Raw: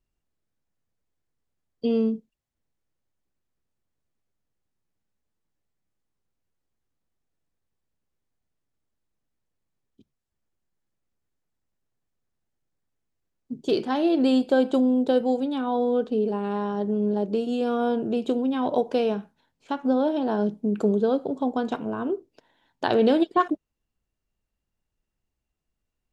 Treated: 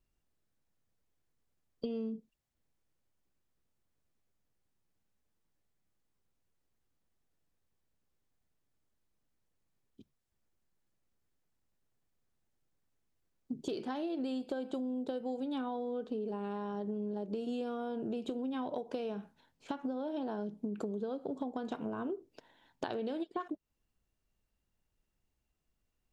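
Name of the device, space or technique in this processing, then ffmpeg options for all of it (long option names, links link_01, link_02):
serial compression, peaks first: -af "acompressor=threshold=-31dB:ratio=6,acompressor=threshold=-35dB:ratio=2.5"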